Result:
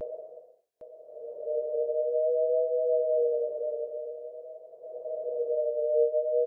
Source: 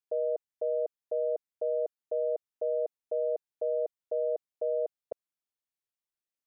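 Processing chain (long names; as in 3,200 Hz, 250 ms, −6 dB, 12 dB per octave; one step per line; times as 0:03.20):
extreme stretch with random phases 7.4×, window 0.25 s, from 0:03.39
single-tap delay 818 ms −10.5 dB
pitch vibrato 0.47 Hz 43 cents
level +2 dB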